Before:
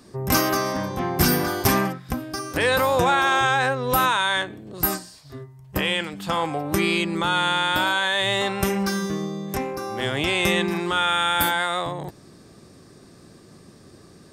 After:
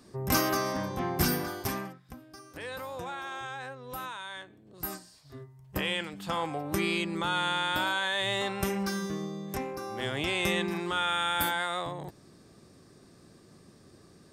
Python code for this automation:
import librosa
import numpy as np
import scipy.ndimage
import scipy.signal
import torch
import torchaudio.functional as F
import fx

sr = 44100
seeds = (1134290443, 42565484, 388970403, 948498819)

y = fx.gain(x, sr, db=fx.line((1.12, -6.0), (2.11, -19.0), (4.42, -19.0), (5.39, -7.5)))